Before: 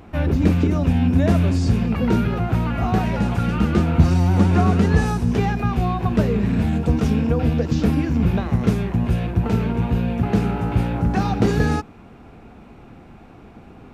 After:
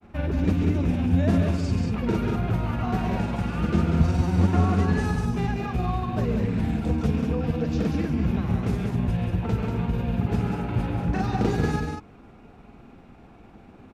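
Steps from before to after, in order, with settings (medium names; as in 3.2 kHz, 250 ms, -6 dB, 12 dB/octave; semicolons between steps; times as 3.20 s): granulator, spray 34 ms, pitch spread up and down by 0 st; on a send: loudspeakers at several distances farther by 46 m -9 dB, 65 m -5 dB; on the sum: trim -5.5 dB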